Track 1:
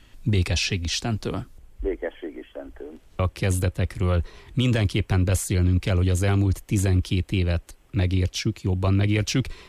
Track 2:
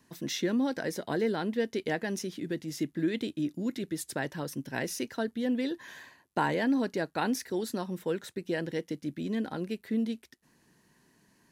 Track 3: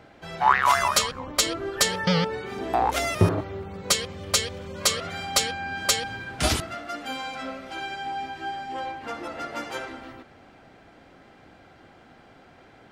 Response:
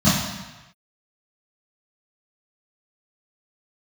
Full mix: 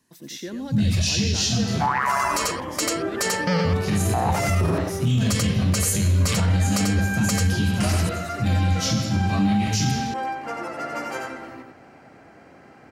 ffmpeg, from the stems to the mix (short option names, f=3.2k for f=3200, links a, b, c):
-filter_complex "[0:a]crystalizer=i=8:c=0,adelay=450,volume=-6dB,asplit=2[a][b];[b]volume=-22.5dB[c];[1:a]equalizer=f=9.8k:t=o:w=1.8:g=6,volume=-5dB,asplit=3[d][e][f];[e]volume=-8dB[g];[2:a]highpass=89,equalizer=f=3.5k:t=o:w=0.41:g=-13,adelay=1400,volume=2.5dB,asplit=2[h][i];[i]volume=-4dB[j];[f]apad=whole_len=447055[k];[a][k]sidechaincompress=threshold=-50dB:ratio=8:attack=16:release=150[l];[3:a]atrim=start_sample=2205[m];[c][m]afir=irnorm=-1:irlink=0[n];[g][j]amix=inputs=2:normalize=0,aecho=0:1:90:1[o];[l][d][h][n][o]amix=inputs=5:normalize=0,alimiter=limit=-13dB:level=0:latency=1:release=30"